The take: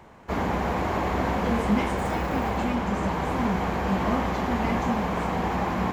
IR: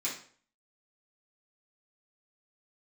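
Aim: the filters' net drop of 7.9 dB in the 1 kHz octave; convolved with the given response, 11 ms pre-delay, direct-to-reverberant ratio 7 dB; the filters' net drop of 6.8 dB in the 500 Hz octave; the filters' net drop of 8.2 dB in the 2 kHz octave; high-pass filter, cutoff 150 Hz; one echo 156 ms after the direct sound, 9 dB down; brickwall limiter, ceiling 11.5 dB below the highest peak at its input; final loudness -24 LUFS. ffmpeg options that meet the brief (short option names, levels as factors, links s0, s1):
-filter_complex "[0:a]highpass=150,equalizer=f=500:t=o:g=-6.5,equalizer=f=1000:t=o:g=-6,equalizer=f=2000:t=o:g=-8,alimiter=level_in=1.33:limit=0.0631:level=0:latency=1,volume=0.75,aecho=1:1:156:0.355,asplit=2[s0][s1];[1:a]atrim=start_sample=2205,adelay=11[s2];[s1][s2]afir=irnorm=-1:irlink=0,volume=0.282[s3];[s0][s3]amix=inputs=2:normalize=0,volume=3.16"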